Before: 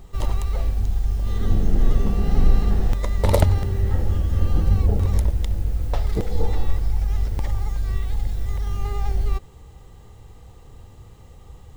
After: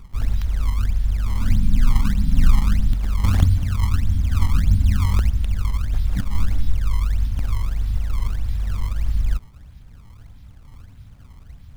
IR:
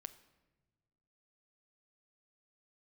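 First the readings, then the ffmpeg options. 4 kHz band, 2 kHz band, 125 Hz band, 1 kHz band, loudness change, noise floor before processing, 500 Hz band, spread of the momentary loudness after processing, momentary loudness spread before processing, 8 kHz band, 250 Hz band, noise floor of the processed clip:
+2.0 dB, +2.5 dB, +1.5 dB, −2.5 dB, +1.0 dB, −46 dBFS, −16.5 dB, 7 LU, 7 LU, can't be measured, +0.5 dB, −44 dBFS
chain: -af "afftfilt=real='re*(1-between(b*sr/4096,300,3100))':imag='im*(1-between(b*sr/4096,300,3100))':win_size=4096:overlap=0.75,acrusher=samples=24:mix=1:aa=0.000001:lfo=1:lforange=38.4:lforate=1.6,volume=1.5dB"

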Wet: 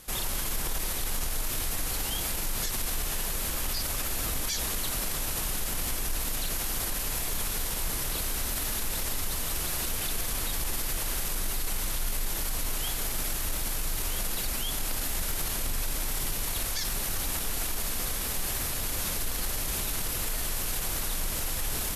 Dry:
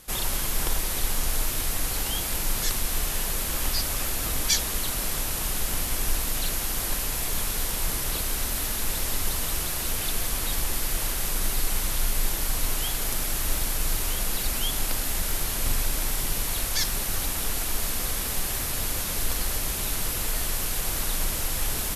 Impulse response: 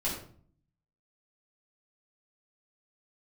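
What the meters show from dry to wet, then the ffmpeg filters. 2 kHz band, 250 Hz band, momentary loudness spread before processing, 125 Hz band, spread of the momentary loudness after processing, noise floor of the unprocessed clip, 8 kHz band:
−3.5 dB, −3.0 dB, 1 LU, −4.0 dB, 1 LU, −29 dBFS, −3.5 dB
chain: -af "alimiter=limit=-21dB:level=0:latency=1:release=35"

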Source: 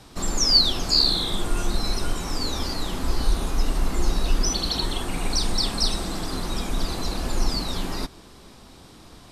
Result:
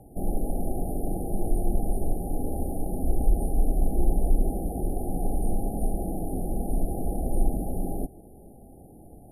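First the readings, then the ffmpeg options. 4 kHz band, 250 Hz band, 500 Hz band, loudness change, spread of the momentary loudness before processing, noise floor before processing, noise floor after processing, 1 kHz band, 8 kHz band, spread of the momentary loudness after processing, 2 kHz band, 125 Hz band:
below −40 dB, 0.0 dB, 0.0 dB, −6.5 dB, 12 LU, −47 dBFS, −49 dBFS, −4.5 dB, −14.0 dB, 13 LU, below −40 dB, 0.0 dB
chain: -af "afftfilt=real='re*(1-between(b*sr/4096,840,9200))':imag='im*(1-between(b*sr/4096,840,9200))':win_size=4096:overlap=0.75"

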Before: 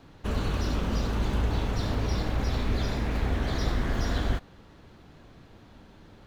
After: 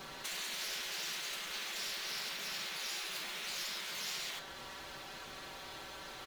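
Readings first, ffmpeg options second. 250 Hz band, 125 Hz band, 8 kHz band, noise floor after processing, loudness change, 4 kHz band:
−24.5 dB, −33.5 dB, can't be measured, −49 dBFS, −10.0 dB, +2.0 dB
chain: -filter_complex "[0:a]acompressor=threshold=-34dB:ratio=8,highshelf=frequency=6500:gain=6,asplit=2[link_01][link_02];[link_02]aecho=0:1:136|272|408:0.251|0.0779|0.0241[link_03];[link_01][link_03]amix=inputs=2:normalize=0,afftfilt=real='re*lt(hypot(re,im),0.0178)':imag='im*lt(hypot(re,im),0.0178)':win_size=1024:overlap=0.75,aecho=1:1:5.2:1,afftfilt=real='re*lt(hypot(re,im),0.0112)':imag='im*lt(hypot(re,im),0.0112)':win_size=1024:overlap=0.75,tiltshelf=frequency=1300:gain=-4,volume=7dB"

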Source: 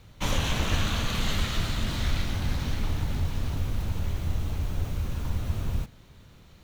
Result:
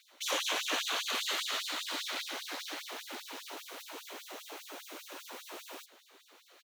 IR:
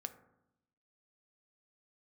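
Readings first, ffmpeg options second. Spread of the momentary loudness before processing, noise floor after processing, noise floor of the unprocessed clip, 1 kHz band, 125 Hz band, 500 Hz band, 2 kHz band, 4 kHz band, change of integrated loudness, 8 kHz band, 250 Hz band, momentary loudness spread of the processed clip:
5 LU, −63 dBFS, −53 dBFS, −3.0 dB, below −40 dB, −4.5 dB, −1.5 dB, −0.5 dB, −6.0 dB, 0.0 dB, −15.5 dB, 14 LU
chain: -af "aecho=1:1:1100:0.1,afftfilt=real='re*gte(b*sr/1024,250*pow(3600/250,0.5+0.5*sin(2*PI*5*pts/sr)))':imag='im*gte(b*sr/1024,250*pow(3600/250,0.5+0.5*sin(2*PI*5*pts/sr)))':win_size=1024:overlap=0.75"

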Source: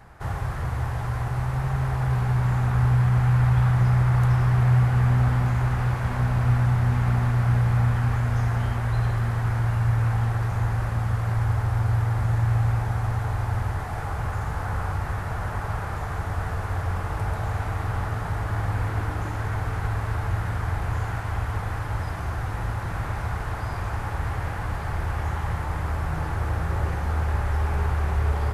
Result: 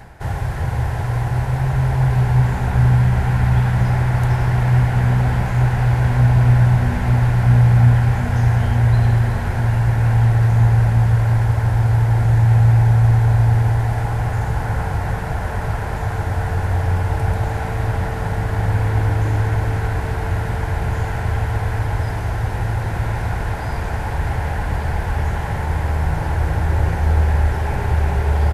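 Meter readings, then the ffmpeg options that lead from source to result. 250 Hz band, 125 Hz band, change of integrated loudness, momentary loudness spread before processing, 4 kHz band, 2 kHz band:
+7.0 dB, +7.0 dB, +7.0 dB, 9 LU, can't be measured, +6.0 dB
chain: -filter_complex "[0:a]equalizer=frequency=1200:width_type=o:width=0.23:gain=-13.5,areverse,acompressor=mode=upward:threshold=-31dB:ratio=2.5,areverse,asplit=2[link_01][link_02];[link_02]adelay=367,lowpass=frequency=2000:poles=1,volume=-4.5dB,asplit=2[link_03][link_04];[link_04]adelay=367,lowpass=frequency=2000:poles=1,volume=0.55,asplit=2[link_05][link_06];[link_06]adelay=367,lowpass=frequency=2000:poles=1,volume=0.55,asplit=2[link_07][link_08];[link_08]adelay=367,lowpass=frequency=2000:poles=1,volume=0.55,asplit=2[link_09][link_10];[link_10]adelay=367,lowpass=frequency=2000:poles=1,volume=0.55,asplit=2[link_11][link_12];[link_12]adelay=367,lowpass=frequency=2000:poles=1,volume=0.55,asplit=2[link_13][link_14];[link_14]adelay=367,lowpass=frequency=2000:poles=1,volume=0.55[link_15];[link_01][link_03][link_05][link_07][link_09][link_11][link_13][link_15]amix=inputs=8:normalize=0,volume=6dB"

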